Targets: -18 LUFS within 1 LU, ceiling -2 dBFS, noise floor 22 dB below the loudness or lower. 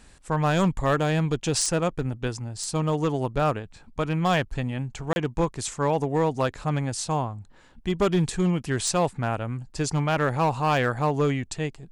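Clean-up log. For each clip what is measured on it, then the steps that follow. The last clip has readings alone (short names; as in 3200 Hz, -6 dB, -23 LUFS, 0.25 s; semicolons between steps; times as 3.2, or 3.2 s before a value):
clipped 1.2%; flat tops at -15.5 dBFS; dropouts 1; longest dropout 31 ms; loudness -26.0 LUFS; peak -15.5 dBFS; loudness target -18.0 LUFS
-> clip repair -15.5 dBFS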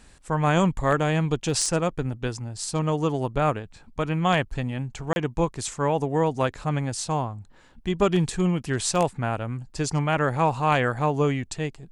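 clipped 0.0%; dropouts 1; longest dropout 31 ms
-> interpolate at 5.13, 31 ms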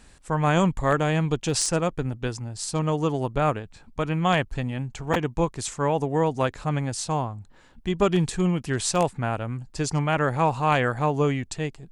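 dropouts 0; loudness -25.5 LUFS; peak -6.5 dBFS; loudness target -18.0 LUFS
-> gain +7.5 dB; limiter -2 dBFS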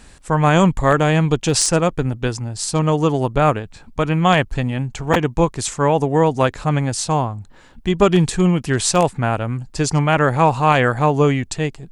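loudness -18.0 LUFS; peak -2.0 dBFS; noise floor -46 dBFS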